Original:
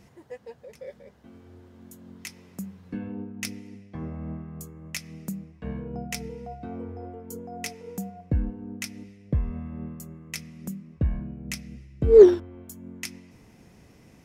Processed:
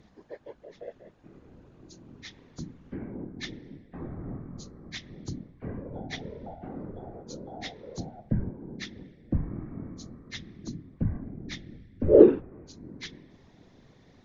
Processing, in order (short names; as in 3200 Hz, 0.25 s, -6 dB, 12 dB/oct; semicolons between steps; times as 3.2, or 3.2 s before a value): nonlinear frequency compression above 1500 Hz 1.5:1; whisperiser; treble ducked by the level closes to 2400 Hz, closed at -24.5 dBFS; gain -3 dB